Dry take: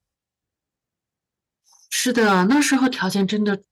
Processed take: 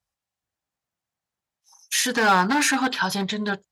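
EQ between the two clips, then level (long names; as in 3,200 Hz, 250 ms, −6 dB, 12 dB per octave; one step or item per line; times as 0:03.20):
low shelf with overshoot 550 Hz −6.5 dB, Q 1.5
0.0 dB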